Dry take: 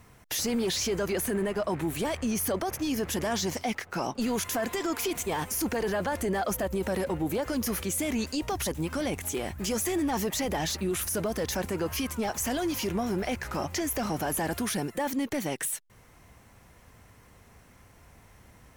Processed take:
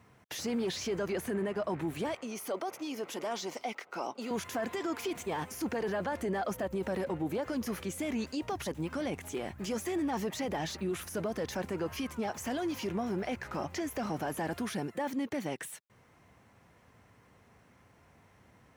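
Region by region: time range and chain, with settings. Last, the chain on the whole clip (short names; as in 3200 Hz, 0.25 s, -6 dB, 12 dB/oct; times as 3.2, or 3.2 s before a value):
2.14–4.31 HPF 350 Hz + notch 1700 Hz, Q 6.1
whole clip: HPF 100 Hz 12 dB/oct; bell 15000 Hz -11.5 dB 1.7 oct; gain -4 dB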